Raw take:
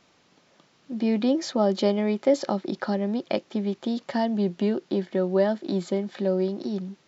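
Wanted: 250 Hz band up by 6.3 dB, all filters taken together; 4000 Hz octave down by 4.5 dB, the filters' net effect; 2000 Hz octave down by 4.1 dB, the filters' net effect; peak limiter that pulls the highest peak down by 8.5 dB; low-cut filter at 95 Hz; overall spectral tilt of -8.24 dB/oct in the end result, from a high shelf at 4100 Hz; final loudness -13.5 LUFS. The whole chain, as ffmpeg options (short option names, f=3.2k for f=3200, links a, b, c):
-af "highpass=95,equalizer=f=250:t=o:g=8,equalizer=f=2k:t=o:g=-4.5,equalizer=f=4k:t=o:g=-7,highshelf=f=4.1k:g=4,volume=10.5dB,alimiter=limit=-4dB:level=0:latency=1"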